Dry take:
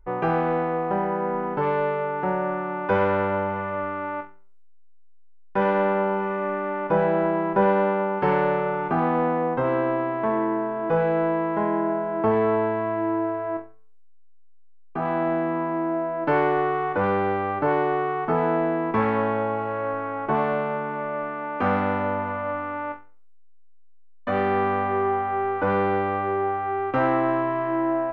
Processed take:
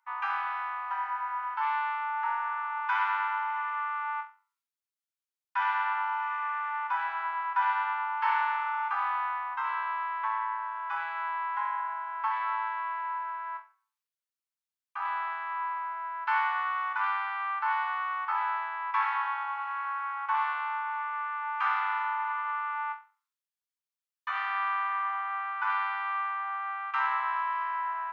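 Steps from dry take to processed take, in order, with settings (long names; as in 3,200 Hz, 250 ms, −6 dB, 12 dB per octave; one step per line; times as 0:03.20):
Chebyshev high-pass filter 890 Hz, order 6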